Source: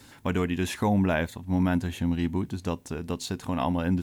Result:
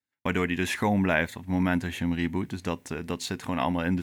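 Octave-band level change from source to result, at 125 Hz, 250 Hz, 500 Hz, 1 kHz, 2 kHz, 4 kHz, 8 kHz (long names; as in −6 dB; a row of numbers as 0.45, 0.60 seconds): −2.5, −1.0, 0.0, +1.0, +5.5, +2.0, +0.5 decibels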